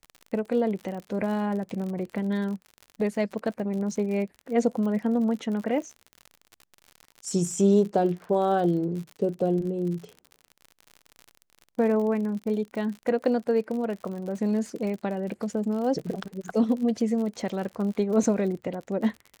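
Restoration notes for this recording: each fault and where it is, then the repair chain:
surface crackle 60 per second −34 dBFS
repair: click removal

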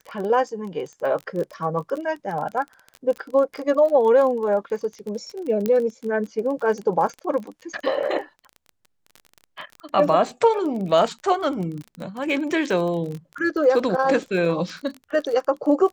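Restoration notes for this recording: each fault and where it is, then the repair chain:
surface crackle 25 per second −29 dBFS
0:05.66: click −11 dBFS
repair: click removal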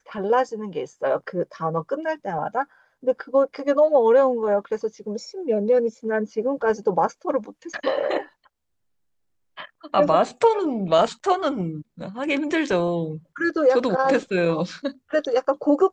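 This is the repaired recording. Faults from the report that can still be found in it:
none of them is left

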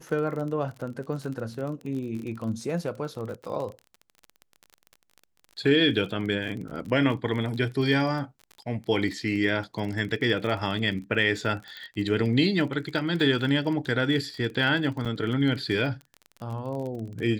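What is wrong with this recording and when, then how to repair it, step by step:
surface crackle 33 per second −33 dBFS
0:11.77: click −27 dBFS
0:15.05–0:15.06: drop-out 7.1 ms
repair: click removal
repair the gap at 0:15.05, 7.1 ms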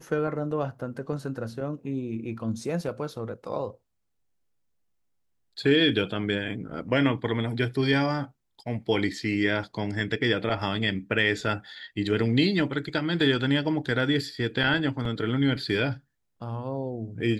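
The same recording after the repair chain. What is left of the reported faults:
none of them is left

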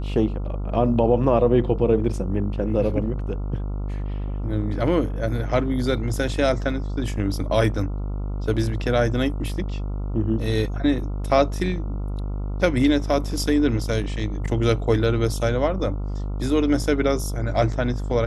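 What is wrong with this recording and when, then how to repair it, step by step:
mains buzz 50 Hz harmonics 28 −27 dBFS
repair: hum removal 50 Hz, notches 28

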